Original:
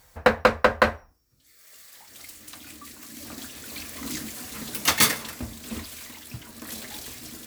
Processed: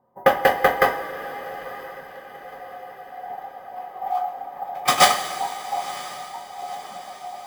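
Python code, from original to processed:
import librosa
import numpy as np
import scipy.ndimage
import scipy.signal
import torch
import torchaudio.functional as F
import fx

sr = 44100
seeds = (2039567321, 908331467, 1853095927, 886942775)

p1 = fx.band_invert(x, sr, width_hz=1000)
p2 = fx.env_lowpass(p1, sr, base_hz=520.0, full_db=-20.0)
p3 = fx.high_shelf(p2, sr, hz=9600.0, db=11.0)
p4 = fx.sample_hold(p3, sr, seeds[0], rate_hz=15000.0, jitter_pct=0)
p5 = fx.notch_comb(p4, sr, f0_hz=1400.0)
p6 = fx.small_body(p5, sr, hz=(750.0, 1200.0), ring_ms=25, db=16)
p7 = p6 + fx.echo_diffused(p6, sr, ms=981, feedback_pct=55, wet_db=-16.0, dry=0)
p8 = fx.rev_double_slope(p7, sr, seeds[1], early_s=0.21, late_s=3.3, knee_db=-18, drr_db=1.0)
y = p8 * 10.0 ** (-4.5 / 20.0)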